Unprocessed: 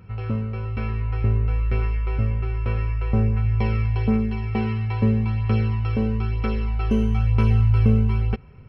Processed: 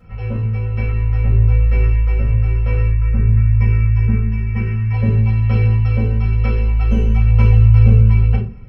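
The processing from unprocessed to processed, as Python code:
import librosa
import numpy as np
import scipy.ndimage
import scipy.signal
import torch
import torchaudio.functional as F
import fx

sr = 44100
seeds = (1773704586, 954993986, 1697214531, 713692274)

y = fx.fixed_phaser(x, sr, hz=1600.0, stages=4, at=(2.87, 4.93))
y = fx.room_shoebox(y, sr, seeds[0], volume_m3=190.0, walls='furnished', distance_m=6.1)
y = F.gain(torch.from_numpy(y), -8.5).numpy()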